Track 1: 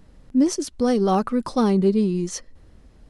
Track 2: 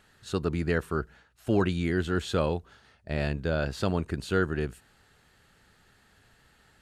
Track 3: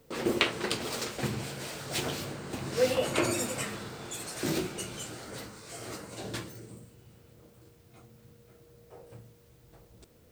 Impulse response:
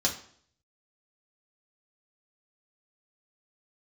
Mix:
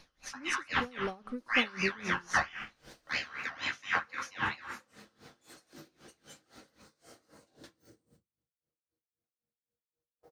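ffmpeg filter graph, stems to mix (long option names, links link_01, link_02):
-filter_complex "[0:a]volume=-13dB,asplit=2[link_01][link_02];[link_02]volume=-21dB[link_03];[1:a]lowpass=10000,aeval=exprs='val(0)*sin(2*PI*1900*n/s+1900*0.35/4.4*sin(2*PI*4.4*n/s))':channel_layout=same,volume=-1dB,asplit=2[link_04][link_05];[link_05]volume=-6dB[link_06];[2:a]agate=range=-25dB:threshold=-49dB:ratio=16:detection=peak,acompressor=threshold=-38dB:ratio=6,adelay=1300,volume=-13dB,asplit=2[link_07][link_08];[link_08]volume=-10.5dB[link_09];[link_04][link_07]amix=inputs=2:normalize=0,acompressor=threshold=-47dB:ratio=2,volume=0dB[link_10];[3:a]atrim=start_sample=2205[link_11];[link_03][link_06][link_09]amix=inputs=3:normalize=0[link_12];[link_12][link_11]afir=irnorm=-1:irlink=0[link_13];[link_01][link_10][link_13]amix=inputs=3:normalize=0,aeval=exprs='val(0)*pow(10,-24*(0.5-0.5*cos(2*PI*3.8*n/s))/20)':channel_layout=same"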